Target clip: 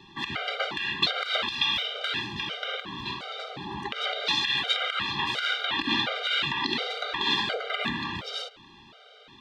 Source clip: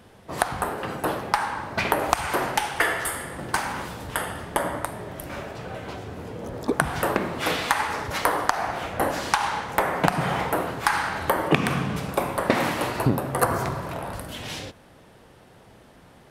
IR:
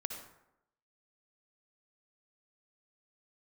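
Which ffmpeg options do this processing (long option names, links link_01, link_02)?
-af "alimiter=limit=-15.5dB:level=0:latency=1:release=197,lowpass=frequency=2100:width_type=q:width=4.8,asetrate=76440,aresample=44100,afftfilt=real='re*gt(sin(2*PI*1.4*pts/sr)*(1-2*mod(floor(b*sr/1024/400),2)),0)':imag='im*gt(sin(2*PI*1.4*pts/sr)*(1-2*mod(floor(b*sr/1024/400),2)),0)':win_size=1024:overlap=0.75"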